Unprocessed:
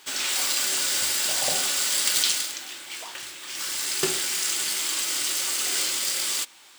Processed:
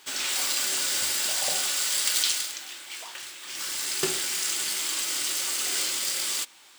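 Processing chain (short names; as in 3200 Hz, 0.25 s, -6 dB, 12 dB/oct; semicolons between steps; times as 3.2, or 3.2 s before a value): 1.29–3.46 low shelf 410 Hz -6.5 dB; gain -2 dB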